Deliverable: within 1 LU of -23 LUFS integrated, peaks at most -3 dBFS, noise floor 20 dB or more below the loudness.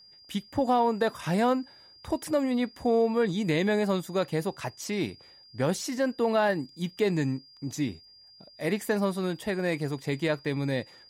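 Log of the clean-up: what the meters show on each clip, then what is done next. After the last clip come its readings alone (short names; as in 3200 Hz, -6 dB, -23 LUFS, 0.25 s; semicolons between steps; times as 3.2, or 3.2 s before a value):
steady tone 4800 Hz; tone level -52 dBFS; loudness -28.5 LUFS; peak -14.5 dBFS; loudness target -23.0 LUFS
-> notch 4800 Hz, Q 30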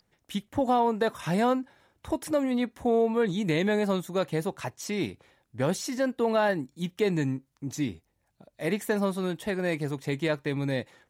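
steady tone none; loudness -28.5 LUFS; peak -14.5 dBFS; loudness target -23.0 LUFS
-> gain +5.5 dB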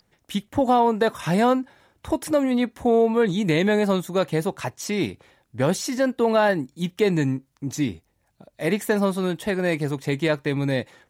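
loudness -23.0 LUFS; peak -9.0 dBFS; noise floor -69 dBFS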